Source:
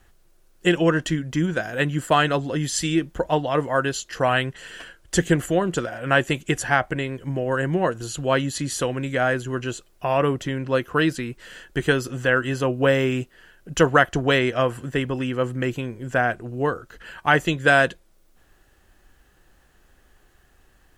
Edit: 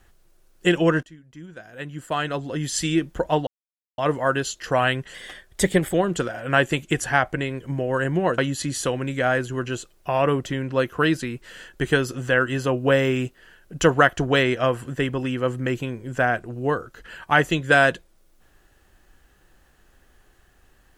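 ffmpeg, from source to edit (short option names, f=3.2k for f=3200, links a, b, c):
-filter_complex "[0:a]asplit=6[a][b][c][d][e][f];[a]atrim=end=1.03,asetpts=PTS-STARTPTS,afade=t=out:st=1.026:d=0.004:c=hsin:silence=0.0749894[g];[b]atrim=start=1.03:end=3.47,asetpts=PTS-STARTPTS,afade=t=in:d=1.82:c=qua:silence=0.0749894,afade=t=out:st=2.436:d=0.004:c=hsin,apad=pad_dur=0.51[h];[c]atrim=start=3.47:end=4.634,asetpts=PTS-STARTPTS,afade=t=in:d=0.004:c=hsin[i];[d]atrim=start=4.63:end=5.52,asetpts=PTS-STARTPTS,asetrate=48951,aresample=44100,atrim=end_sample=35359,asetpts=PTS-STARTPTS[j];[e]atrim=start=5.516:end=7.962[k];[f]atrim=start=8.338[l];[g][h][i]concat=n=3:v=0:a=1[m];[m][j]acrossfade=d=0.004:c1=hsin:c2=hsin[n];[n][k]acrossfade=d=0.004:c1=hsin:c2=hsin[o];[o][l]acrossfade=d=0.004:c1=hsin:c2=hsin"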